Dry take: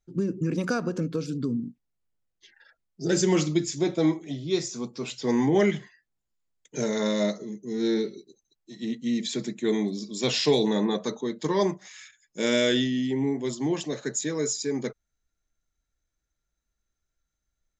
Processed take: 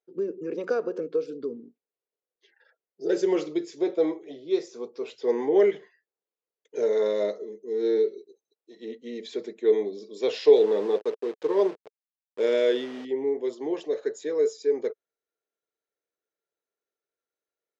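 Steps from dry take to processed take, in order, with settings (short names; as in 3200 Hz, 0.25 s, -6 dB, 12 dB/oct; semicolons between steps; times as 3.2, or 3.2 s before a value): 10.56–13.05 level-crossing sampler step -32 dBFS; resonant high-pass 440 Hz, resonance Q 4.9; air absorption 150 m; gain -5.5 dB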